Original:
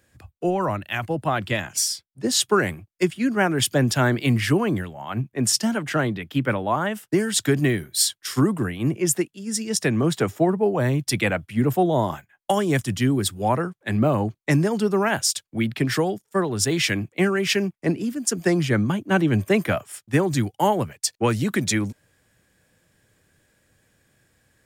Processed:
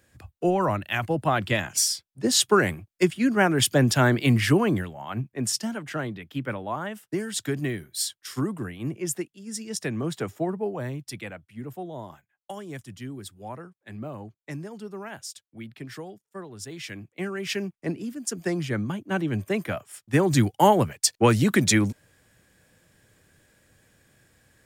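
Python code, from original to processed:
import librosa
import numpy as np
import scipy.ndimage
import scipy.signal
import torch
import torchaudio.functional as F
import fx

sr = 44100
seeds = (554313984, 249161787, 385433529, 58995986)

y = fx.gain(x, sr, db=fx.line((4.67, 0.0), (5.75, -8.0), (10.63, -8.0), (11.37, -16.5), (16.76, -16.5), (17.59, -7.0), (19.86, -7.0), (20.36, 2.5)))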